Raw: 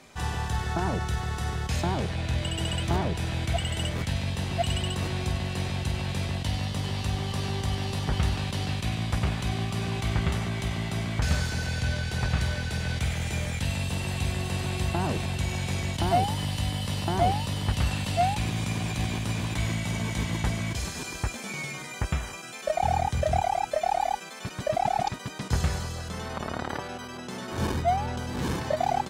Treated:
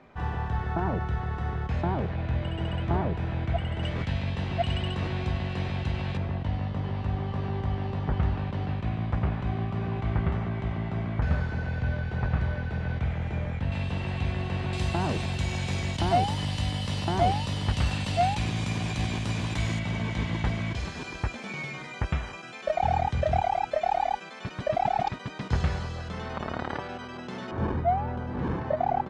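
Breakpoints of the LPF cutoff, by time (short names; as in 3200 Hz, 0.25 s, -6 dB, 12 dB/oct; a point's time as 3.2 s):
1700 Hz
from 3.83 s 2900 Hz
from 6.17 s 1500 Hz
from 13.72 s 2600 Hz
from 14.73 s 6600 Hz
from 19.79 s 3500 Hz
from 27.51 s 1500 Hz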